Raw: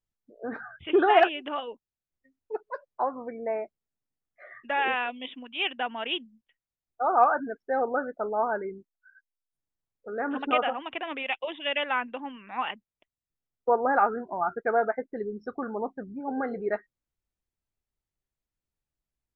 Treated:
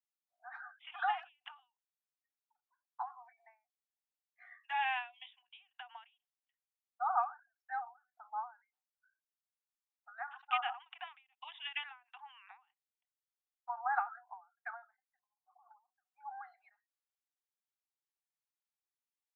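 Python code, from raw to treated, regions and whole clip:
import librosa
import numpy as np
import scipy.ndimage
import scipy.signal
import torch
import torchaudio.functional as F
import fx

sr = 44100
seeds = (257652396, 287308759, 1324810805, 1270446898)

y = fx.chain(x, sr, fx.peak_eq(hz=1300.0, db=-12.0, octaves=0.23),
    fx.doubler(ms=14.0, db=-11), at=(3.15, 5.6))
y = fx.chain(y, sr, fx.over_compress(threshold_db=-39.0, ratio=-0.5),
    fx.cheby_ripple(hz=1100.0, ripple_db=3), at=(15.19, 15.71))
y = scipy.signal.sosfilt(scipy.signal.cheby1(8, 1.0, 730.0, 'highpass', fs=sr, output='sos'), y)
y = fx.end_taper(y, sr, db_per_s=180.0)
y = F.gain(torch.from_numpy(y), -6.5).numpy()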